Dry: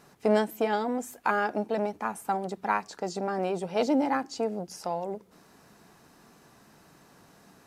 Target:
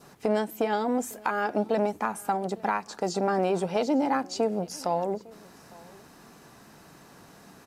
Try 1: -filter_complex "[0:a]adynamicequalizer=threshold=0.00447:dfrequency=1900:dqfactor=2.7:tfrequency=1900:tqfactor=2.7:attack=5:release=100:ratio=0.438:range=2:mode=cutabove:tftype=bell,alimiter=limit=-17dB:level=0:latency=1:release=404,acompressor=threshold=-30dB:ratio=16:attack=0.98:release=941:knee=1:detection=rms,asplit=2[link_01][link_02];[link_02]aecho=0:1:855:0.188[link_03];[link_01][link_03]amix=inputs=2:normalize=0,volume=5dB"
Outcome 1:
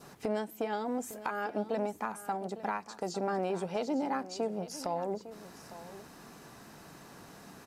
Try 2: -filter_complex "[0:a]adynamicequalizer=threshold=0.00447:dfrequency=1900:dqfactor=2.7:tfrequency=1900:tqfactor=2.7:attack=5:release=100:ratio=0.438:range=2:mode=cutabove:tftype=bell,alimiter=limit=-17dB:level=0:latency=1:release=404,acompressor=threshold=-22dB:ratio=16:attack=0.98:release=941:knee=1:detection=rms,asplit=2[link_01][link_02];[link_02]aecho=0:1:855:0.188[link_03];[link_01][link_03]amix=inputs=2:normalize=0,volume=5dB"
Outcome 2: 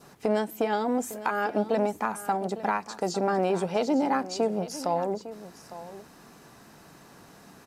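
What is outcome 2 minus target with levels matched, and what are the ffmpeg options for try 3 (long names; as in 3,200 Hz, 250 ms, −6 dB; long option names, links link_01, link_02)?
echo-to-direct +9 dB
-filter_complex "[0:a]adynamicequalizer=threshold=0.00447:dfrequency=1900:dqfactor=2.7:tfrequency=1900:tqfactor=2.7:attack=5:release=100:ratio=0.438:range=2:mode=cutabove:tftype=bell,alimiter=limit=-17dB:level=0:latency=1:release=404,acompressor=threshold=-22dB:ratio=16:attack=0.98:release=941:knee=1:detection=rms,asplit=2[link_01][link_02];[link_02]aecho=0:1:855:0.0668[link_03];[link_01][link_03]amix=inputs=2:normalize=0,volume=5dB"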